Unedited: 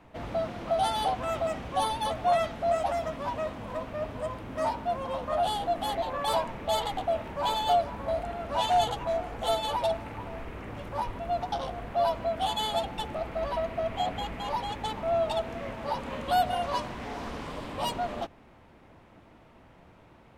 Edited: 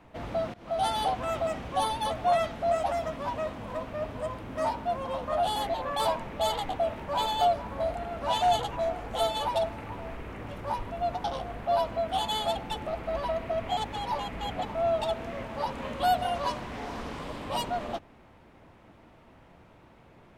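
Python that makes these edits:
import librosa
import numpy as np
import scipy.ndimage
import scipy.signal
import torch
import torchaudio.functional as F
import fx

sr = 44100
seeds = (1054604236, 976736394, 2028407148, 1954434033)

y = fx.edit(x, sr, fx.fade_in_from(start_s=0.54, length_s=0.32, floor_db=-21.5),
    fx.cut(start_s=5.56, length_s=0.28),
    fx.reverse_span(start_s=14.05, length_s=0.86), tone=tone)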